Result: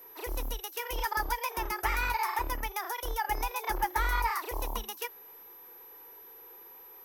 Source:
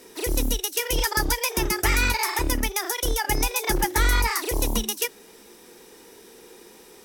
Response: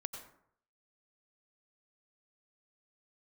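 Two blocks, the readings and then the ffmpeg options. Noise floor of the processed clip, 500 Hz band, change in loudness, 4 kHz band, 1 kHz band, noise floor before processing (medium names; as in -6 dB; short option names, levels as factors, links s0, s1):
-51 dBFS, -11.0 dB, -9.0 dB, -13.5 dB, -2.0 dB, -50 dBFS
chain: -af "aeval=exprs='val(0)+0.0158*sin(2*PI*12000*n/s)':c=same,equalizer=f=125:t=o:w=1:g=-12,equalizer=f=250:t=o:w=1:g=-9,equalizer=f=1000:t=o:w=1:g=9,equalizer=f=4000:t=o:w=1:g=-3,equalizer=f=8000:t=o:w=1:g=-10,volume=0.355"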